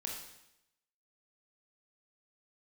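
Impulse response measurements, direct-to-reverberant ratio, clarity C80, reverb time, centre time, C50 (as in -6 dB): -1.0 dB, 6.0 dB, 0.85 s, 45 ms, 3.0 dB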